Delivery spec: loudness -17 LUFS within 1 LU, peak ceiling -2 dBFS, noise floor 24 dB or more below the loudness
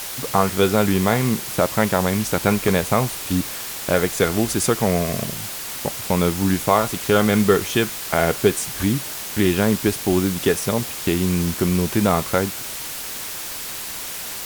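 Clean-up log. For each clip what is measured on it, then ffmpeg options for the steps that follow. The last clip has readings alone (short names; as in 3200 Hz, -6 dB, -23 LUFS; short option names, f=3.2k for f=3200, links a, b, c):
noise floor -31 dBFS; noise floor target -45 dBFS; loudness -20.5 LUFS; peak -2.5 dBFS; loudness target -17.0 LUFS
-> -af "afftdn=nr=14:nf=-31"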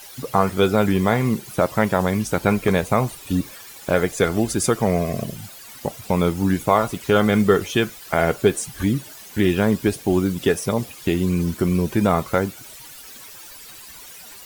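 noise floor -41 dBFS; noise floor target -45 dBFS
-> -af "afftdn=nr=6:nf=-41"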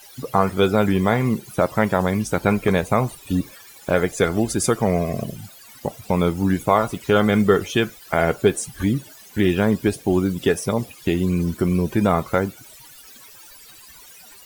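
noise floor -45 dBFS; loudness -21.0 LUFS; peak -3.0 dBFS; loudness target -17.0 LUFS
-> -af "volume=4dB,alimiter=limit=-2dB:level=0:latency=1"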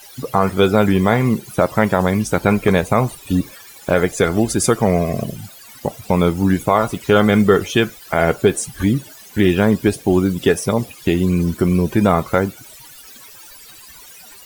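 loudness -17.0 LUFS; peak -2.0 dBFS; noise floor -41 dBFS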